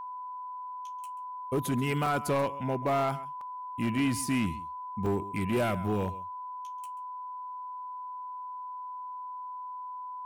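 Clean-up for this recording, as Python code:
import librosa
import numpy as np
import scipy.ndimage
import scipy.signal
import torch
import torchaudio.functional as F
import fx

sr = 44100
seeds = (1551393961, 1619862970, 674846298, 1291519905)

y = fx.fix_declip(x, sr, threshold_db=-22.5)
y = fx.notch(y, sr, hz=1000.0, q=30.0)
y = fx.fix_interpolate(y, sr, at_s=(2.06, 3.41, 5.06), length_ms=3.2)
y = fx.fix_echo_inverse(y, sr, delay_ms=134, level_db=-17.5)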